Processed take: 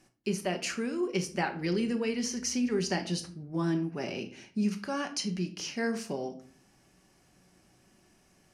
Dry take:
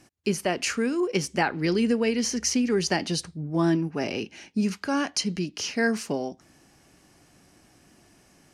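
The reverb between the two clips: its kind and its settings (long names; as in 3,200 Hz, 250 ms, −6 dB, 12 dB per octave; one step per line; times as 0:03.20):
rectangular room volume 440 cubic metres, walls furnished, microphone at 1.1 metres
level −7.5 dB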